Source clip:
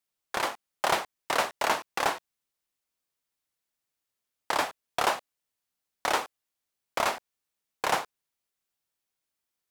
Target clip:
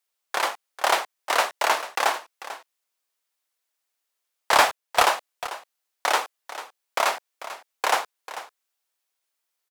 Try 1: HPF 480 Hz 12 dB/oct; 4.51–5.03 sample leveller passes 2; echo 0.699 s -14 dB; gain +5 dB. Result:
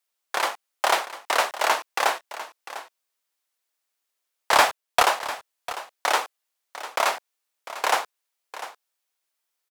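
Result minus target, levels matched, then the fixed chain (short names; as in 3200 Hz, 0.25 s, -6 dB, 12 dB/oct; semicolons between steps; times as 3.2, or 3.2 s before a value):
echo 0.256 s late
HPF 480 Hz 12 dB/oct; 4.51–5.03 sample leveller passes 2; echo 0.443 s -14 dB; gain +5 dB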